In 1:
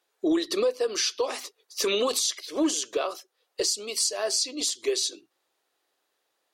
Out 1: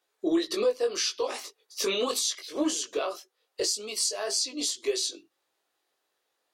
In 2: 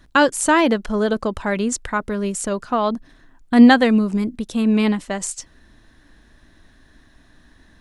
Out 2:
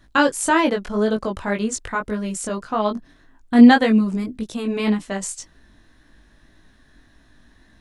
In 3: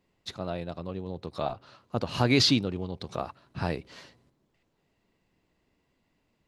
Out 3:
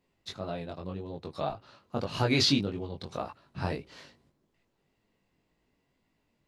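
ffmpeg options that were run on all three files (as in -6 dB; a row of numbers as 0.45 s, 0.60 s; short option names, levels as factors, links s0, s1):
-af "flanger=delay=18.5:depth=2.8:speed=1.8,volume=1.12"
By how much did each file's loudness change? -2.0 LU, -1.0 LU, -2.5 LU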